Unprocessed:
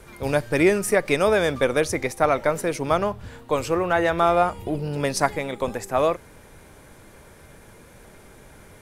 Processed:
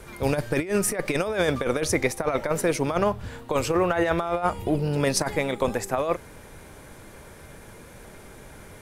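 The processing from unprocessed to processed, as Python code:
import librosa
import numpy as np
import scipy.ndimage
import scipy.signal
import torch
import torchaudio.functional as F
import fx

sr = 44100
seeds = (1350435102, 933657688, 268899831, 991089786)

y = fx.over_compress(x, sr, threshold_db=-22.0, ratio=-0.5)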